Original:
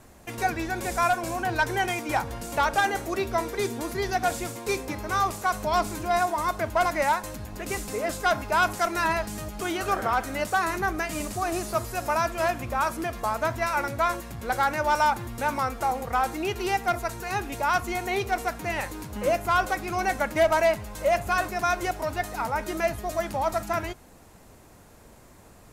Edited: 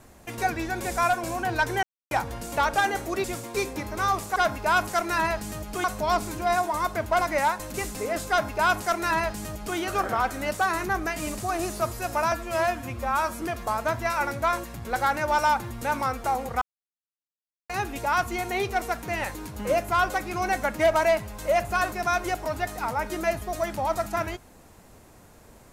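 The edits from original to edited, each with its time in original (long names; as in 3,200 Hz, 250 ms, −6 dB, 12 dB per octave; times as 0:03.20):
0:01.83–0:02.11: silence
0:03.24–0:04.36: remove
0:07.38–0:07.67: remove
0:08.22–0:09.70: duplicate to 0:05.48
0:12.25–0:12.98: time-stretch 1.5×
0:16.18–0:17.26: silence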